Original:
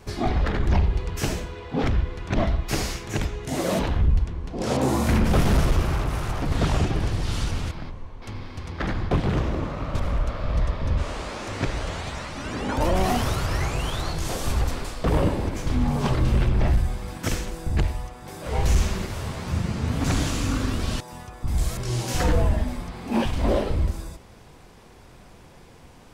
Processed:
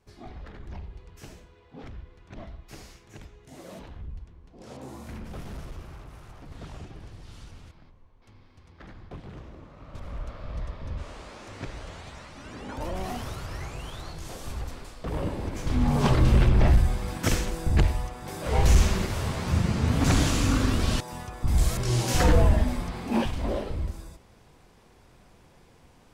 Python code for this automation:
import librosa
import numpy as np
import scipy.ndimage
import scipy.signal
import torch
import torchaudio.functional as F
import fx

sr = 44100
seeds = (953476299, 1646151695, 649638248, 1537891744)

y = fx.gain(x, sr, db=fx.line((9.68, -19.5), (10.21, -11.0), (15.06, -11.0), (16.01, 1.5), (22.97, 1.5), (23.49, -7.5)))